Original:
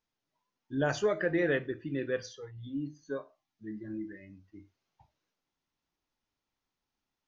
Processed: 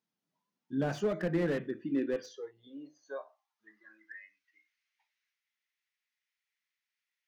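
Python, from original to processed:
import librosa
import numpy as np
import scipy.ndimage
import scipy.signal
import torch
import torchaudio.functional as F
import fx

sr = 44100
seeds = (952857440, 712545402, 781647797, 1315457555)

y = fx.filter_sweep_highpass(x, sr, from_hz=180.0, to_hz=2000.0, start_s=1.62, end_s=4.37, q=3.6)
y = fx.slew_limit(y, sr, full_power_hz=38.0)
y = y * 10.0 ** (-4.0 / 20.0)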